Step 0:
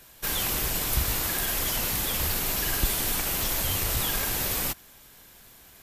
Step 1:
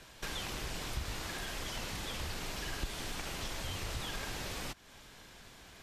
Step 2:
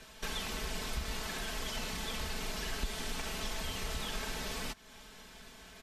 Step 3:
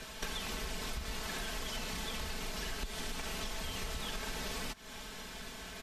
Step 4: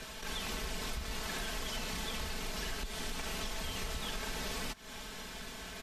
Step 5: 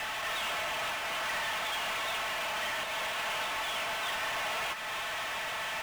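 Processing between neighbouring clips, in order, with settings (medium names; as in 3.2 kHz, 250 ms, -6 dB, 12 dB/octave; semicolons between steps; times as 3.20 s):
compression 3:1, threshold -38 dBFS, peak gain reduction 14.5 dB; low-pass 5.9 kHz 12 dB/octave; trim +1 dB
comb 4.6 ms
compression 6:1, threshold -43 dBFS, peak gain reduction 13 dB; trim +7 dB
attacks held to a fixed rise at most 100 dB/s; trim +1 dB
mistuned SSB +220 Hz 400–3000 Hz; power-law waveshaper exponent 0.35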